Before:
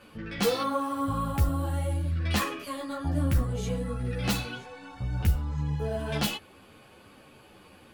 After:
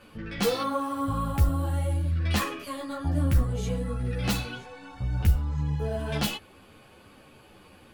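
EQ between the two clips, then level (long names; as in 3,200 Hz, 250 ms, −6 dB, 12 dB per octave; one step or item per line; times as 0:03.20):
low-shelf EQ 62 Hz +6.5 dB
0.0 dB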